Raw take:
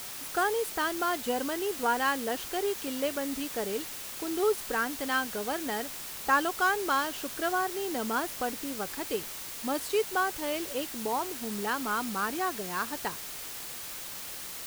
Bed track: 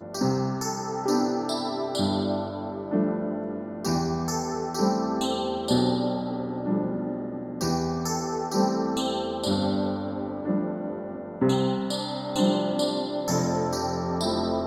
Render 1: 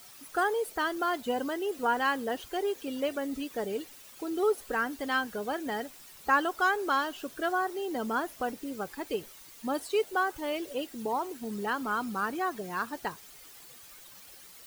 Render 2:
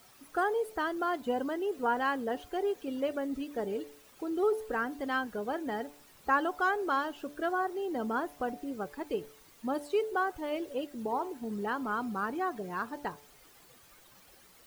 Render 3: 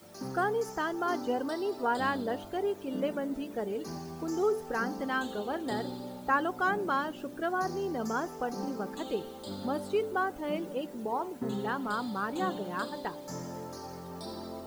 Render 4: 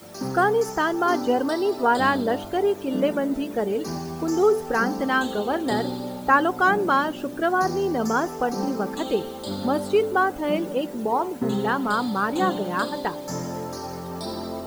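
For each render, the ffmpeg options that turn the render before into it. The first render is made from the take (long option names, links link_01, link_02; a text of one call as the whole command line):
ffmpeg -i in.wav -af "afftdn=noise_reduction=13:noise_floor=-40" out.wav
ffmpeg -i in.wav -af "highshelf=frequency=2000:gain=-9.5,bandreject=frequency=145.4:width_type=h:width=4,bandreject=frequency=290.8:width_type=h:width=4,bandreject=frequency=436.2:width_type=h:width=4,bandreject=frequency=581.6:width_type=h:width=4,bandreject=frequency=727:width_type=h:width=4,bandreject=frequency=872.4:width_type=h:width=4,bandreject=frequency=1017.8:width_type=h:width=4" out.wav
ffmpeg -i in.wav -i bed.wav -filter_complex "[1:a]volume=-15dB[link_01];[0:a][link_01]amix=inputs=2:normalize=0" out.wav
ffmpeg -i in.wav -af "volume=9.5dB" out.wav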